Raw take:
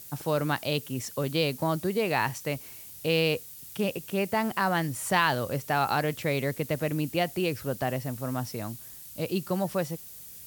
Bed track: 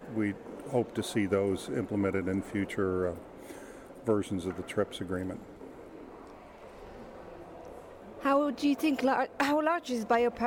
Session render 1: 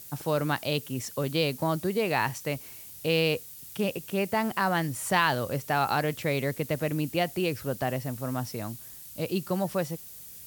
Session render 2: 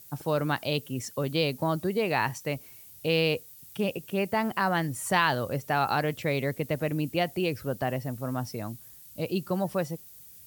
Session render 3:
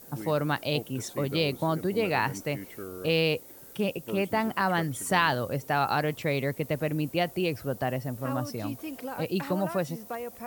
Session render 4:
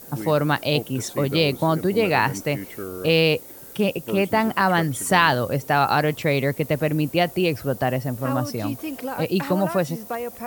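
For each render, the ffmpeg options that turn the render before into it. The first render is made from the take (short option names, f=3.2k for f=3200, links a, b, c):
-af anull
-af "afftdn=nr=7:nf=-46"
-filter_complex "[1:a]volume=-10dB[a];[0:a][a]amix=inputs=2:normalize=0"
-af "volume=7dB,alimiter=limit=-2dB:level=0:latency=1"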